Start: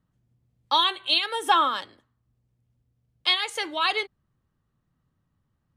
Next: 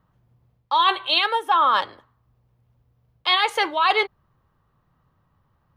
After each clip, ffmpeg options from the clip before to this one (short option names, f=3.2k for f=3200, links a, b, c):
-af "equalizer=f=250:t=o:w=1:g=-5,equalizer=f=500:t=o:w=1:g=3,equalizer=f=1k:t=o:w=1:g=8,equalizer=f=8k:t=o:w=1:g=-11,areverse,acompressor=threshold=-23dB:ratio=16,areverse,volume=8dB"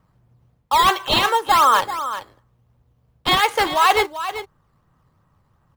-filter_complex "[0:a]asplit=2[a][b];[b]acrusher=samples=10:mix=1:aa=0.000001:lfo=1:lforange=10:lforate=2.8,volume=-4dB[c];[a][c]amix=inputs=2:normalize=0,aecho=1:1:388:0.266"